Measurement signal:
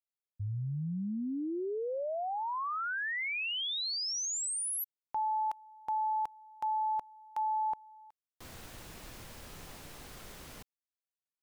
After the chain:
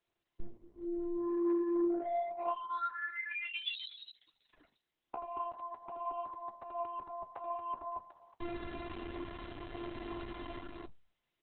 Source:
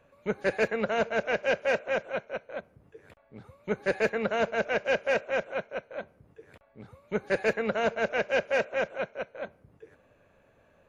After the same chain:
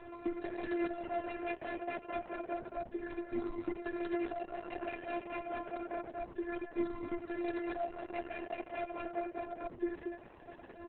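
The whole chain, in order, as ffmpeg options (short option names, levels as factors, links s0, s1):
-filter_complex "[0:a]asplit=2[s0][s1];[s1]alimiter=limit=0.0631:level=0:latency=1:release=13,volume=1[s2];[s0][s2]amix=inputs=2:normalize=0,afftfilt=real='hypot(re,im)*cos(PI*b)':imag='0':win_size=512:overlap=0.75,aeval=exprs='(mod(3.98*val(0)+1,2)-1)/3.98':c=same,aecho=1:1:78.72|227.4:0.282|0.447,acompressor=threshold=0.0282:ratio=16:attack=0.15:release=416:knee=6:detection=rms,asoftclip=type=tanh:threshold=0.0141,highshelf=f=2100:g=-9,acrossover=split=100|400[s3][s4][s5];[s3]acompressor=threshold=0.00355:ratio=2.5[s6];[s4]acompressor=threshold=0.00178:ratio=4[s7];[s5]acompressor=threshold=0.00251:ratio=6[s8];[s6][s7][s8]amix=inputs=3:normalize=0,flanger=delay=8.1:depth=7.1:regen=49:speed=0.3:shape=triangular,equalizer=f=170:t=o:w=1.6:g=4,volume=7.5" -ar 48000 -c:a libopus -b:a 6k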